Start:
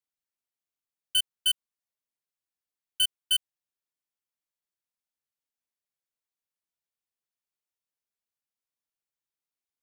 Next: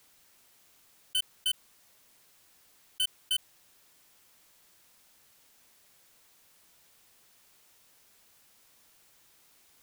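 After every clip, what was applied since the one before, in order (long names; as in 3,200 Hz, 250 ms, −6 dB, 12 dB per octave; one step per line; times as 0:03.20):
envelope flattener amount 50%
level −5.5 dB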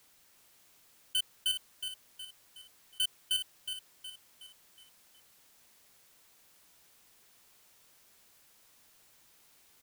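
repeating echo 367 ms, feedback 46%, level −8 dB
level −1.5 dB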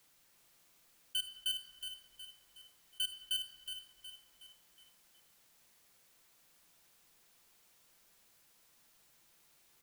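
rectangular room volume 2,400 cubic metres, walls mixed, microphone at 0.79 metres
level −5 dB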